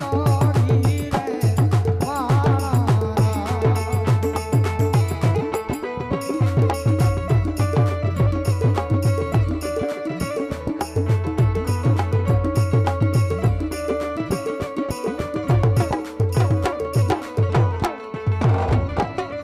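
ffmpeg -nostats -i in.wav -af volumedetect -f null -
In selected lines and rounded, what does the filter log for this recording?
mean_volume: -19.7 dB
max_volume: -9.7 dB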